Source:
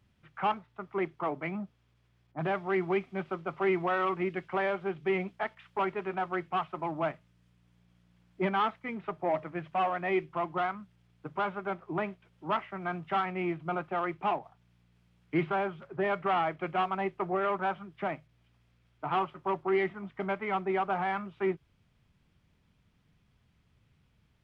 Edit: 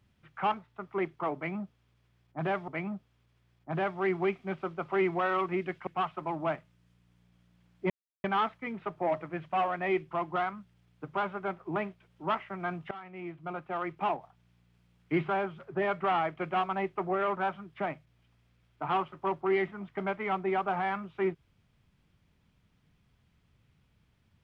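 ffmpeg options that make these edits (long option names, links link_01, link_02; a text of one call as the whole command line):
ffmpeg -i in.wav -filter_complex "[0:a]asplit=5[link_01][link_02][link_03][link_04][link_05];[link_01]atrim=end=2.682[link_06];[link_02]atrim=start=1.358:end=4.552[link_07];[link_03]atrim=start=6.428:end=8.46,asetpts=PTS-STARTPTS,afade=type=out:start_time=2.028:duration=0.004:curve=hsin,apad=pad_dur=0.34[link_08];[link_04]atrim=start=8.46:end=13.13,asetpts=PTS-STARTPTS,afade=type=in:duration=0.004:curve=hsin,afade=type=out:start_time=4.666:duration=0.004:curve=hsin:silence=0.125893[link_09];[link_05]atrim=start=13.13,asetpts=PTS-STARTPTS,afade=type=in:duration=1.23:silence=0.125893[link_10];[link_06][link_07]acrossfade=duration=0.004:curve1=hsin:curve2=hsin[link_11];[link_08][link_09][link_10]concat=n=3:v=0:a=1[link_12];[link_11][link_12]acrossfade=duration=0.004:curve1=hsin:curve2=hsin" out.wav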